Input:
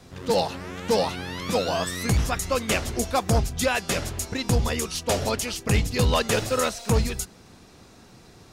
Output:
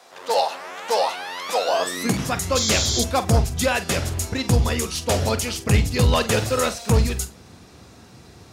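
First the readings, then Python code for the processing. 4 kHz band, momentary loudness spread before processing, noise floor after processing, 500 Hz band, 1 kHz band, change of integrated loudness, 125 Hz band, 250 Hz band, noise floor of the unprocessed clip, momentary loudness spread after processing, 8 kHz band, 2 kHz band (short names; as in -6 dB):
+4.5 dB, 6 LU, -47 dBFS, +2.0 dB, +4.0 dB, +3.5 dB, +4.5 dB, +2.5 dB, -51 dBFS, 7 LU, +4.5 dB, +2.5 dB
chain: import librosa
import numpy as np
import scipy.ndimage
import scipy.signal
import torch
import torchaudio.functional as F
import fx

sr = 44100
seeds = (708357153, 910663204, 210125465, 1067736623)

p1 = fx.room_flutter(x, sr, wall_m=7.8, rt60_s=0.21)
p2 = fx.spec_paint(p1, sr, seeds[0], shape='noise', start_s=2.55, length_s=0.49, low_hz=3100.0, high_hz=7500.0, level_db=-26.0)
p3 = 10.0 ** (-19.0 / 20.0) * np.tanh(p2 / 10.0 ** (-19.0 / 20.0))
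p4 = p2 + (p3 * 10.0 ** (-8.5 / 20.0))
y = fx.filter_sweep_highpass(p4, sr, from_hz=700.0, to_hz=70.0, start_s=1.61, end_s=2.59, q=1.6)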